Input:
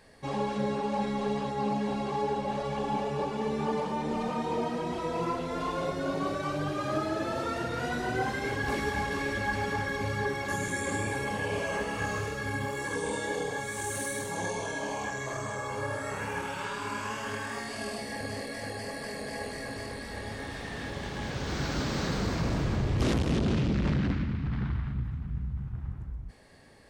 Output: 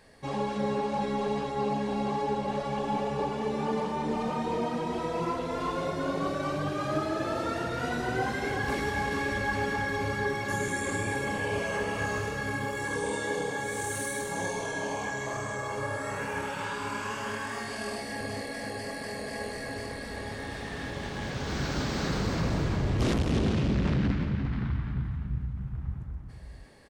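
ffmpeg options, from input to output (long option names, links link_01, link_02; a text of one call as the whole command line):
ffmpeg -i in.wav -filter_complex "[0:a]asplit=2[link_01][link_02];[link_02]adelay=349.9,volume=-7dB,highshelf=frequency=4000:gain=-7.87[link_03];[link_01][link_03]amix=inputs=2:normalize=0" out.wav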